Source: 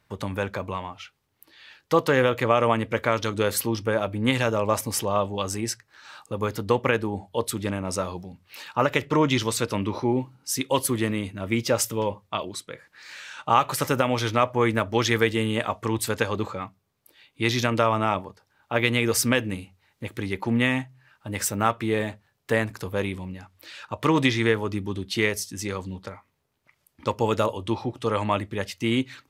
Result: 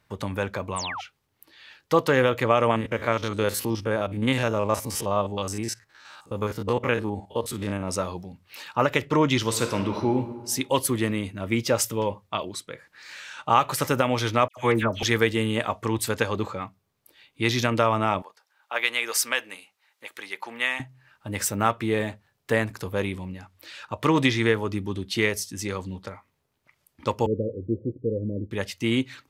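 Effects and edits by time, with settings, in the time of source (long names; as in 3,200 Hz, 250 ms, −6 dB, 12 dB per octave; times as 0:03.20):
0:00.76–0:01.01: sound drawn into the spectrogram fall 670–10,000 Hz −33 dBFS
0:02.71–0:07.88: spectrum averaged block by block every 50 ms
0:09.40–0:10.10: thrown reverb, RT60 1.4 s, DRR 5.5 dB
0:14.48–0:15.03: all-pass dispersion lows, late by 90 ms, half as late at 1,800 Hz
0:18.22–0:20.80: high-pass filter 810 Hz
0:27.26–0:28.51: Butterworth low-pass 530 Hz 96 dB per octave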